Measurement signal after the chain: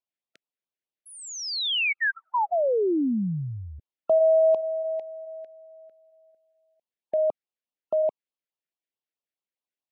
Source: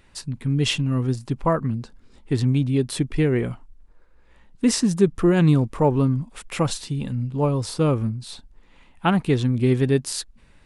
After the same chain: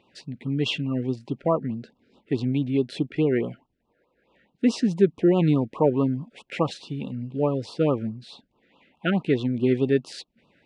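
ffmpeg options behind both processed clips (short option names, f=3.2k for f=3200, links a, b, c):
-af "highpass=200,lowpass=3.1k,afftfilt=real='re*(1-between(b*sr/1024,910*pow(1900/910,0.5+0.5*sin(2*PI*4.7*pts/sr))/1.41,910*pow(1900/910,0.5+0.5*sin(2*PI*4.7*pts/sr))*1.41))':imag='im*(1-between(b*sr/1024,910*pow(1900/910,0.5+0.5*sin(2*PI*4.7*pts/sr))/1.41,910*pow(1900/910,0.5+0.5*sin(2*PI*4.7*pts/sr))*1.41))':win_size=1024:overlap=0.75"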